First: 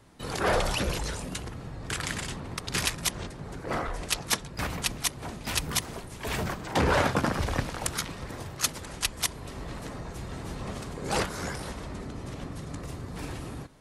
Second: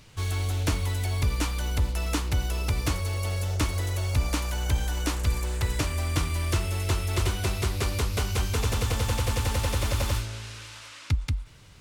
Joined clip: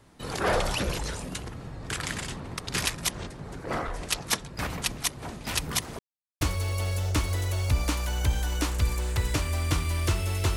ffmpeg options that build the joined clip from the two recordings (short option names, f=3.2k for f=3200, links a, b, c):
-filter_complex "[0:a]apad=whole_dur=10.56,atrim=end=10.56,asplit=2[a][b];[a]atrim=end=5.99,asetpts=PTS-STARTPTS,afade=t=out:st=5.986:d=0.004:c=hsin[c];[b]atrim=start=5.99:end=6.41,asetpts=PTS-STARTPTS,volume=0[d];[1:a]atrim=start=2.86:end=7.01,asetpts=PTS-STARTPTS,afade=t=in:d=0.004:c=hsin[e];[c][d][e]concat=n=3:v=0:a=1"